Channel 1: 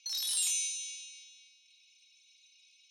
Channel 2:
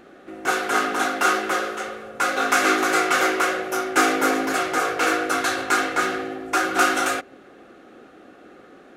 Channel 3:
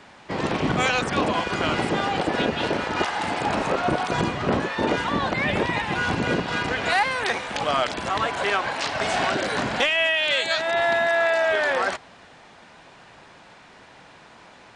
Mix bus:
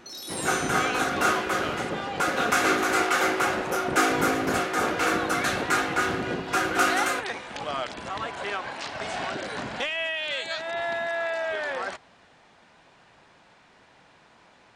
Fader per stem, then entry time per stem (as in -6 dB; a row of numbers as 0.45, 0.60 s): -4.5, -4.0, -8.0 dB; 0.00, 0.00, 0.00 s